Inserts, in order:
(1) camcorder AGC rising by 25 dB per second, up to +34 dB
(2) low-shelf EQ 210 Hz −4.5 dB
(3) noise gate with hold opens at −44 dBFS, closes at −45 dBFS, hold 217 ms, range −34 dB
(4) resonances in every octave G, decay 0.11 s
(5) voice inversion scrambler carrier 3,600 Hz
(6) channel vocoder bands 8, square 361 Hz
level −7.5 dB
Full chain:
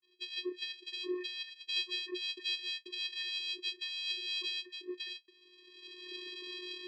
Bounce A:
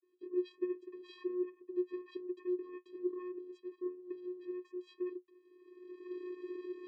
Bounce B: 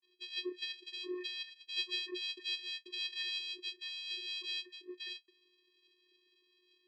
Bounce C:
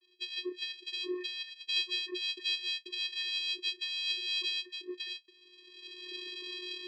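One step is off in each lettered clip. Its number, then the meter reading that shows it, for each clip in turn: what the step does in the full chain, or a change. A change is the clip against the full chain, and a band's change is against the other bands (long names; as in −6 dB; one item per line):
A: 5, change in crest factor −2.5 dB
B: 1, change in momentary loudness spread −2 LU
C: 2, 250 Hz band −3.0 dB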